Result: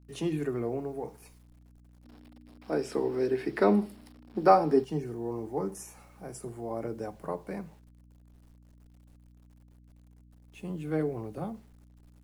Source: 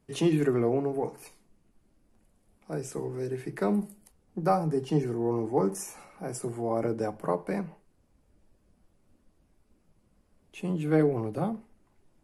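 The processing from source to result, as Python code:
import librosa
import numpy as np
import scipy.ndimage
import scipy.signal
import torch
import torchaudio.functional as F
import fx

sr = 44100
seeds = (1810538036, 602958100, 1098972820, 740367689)

y = fx.quant_dither(x, sr, seeds[0], bits=10, dither='none')
y = fx.add_hum(y, sr, base_hz=60, snr_db=19)
y = fx.spec_box(y, sr, start_s=2.05, length_s=2.79, low_hz=210.0, high_hz=5600.0, gain_db=12)
y = y * 10.0 ** (-6.5 / 20.0)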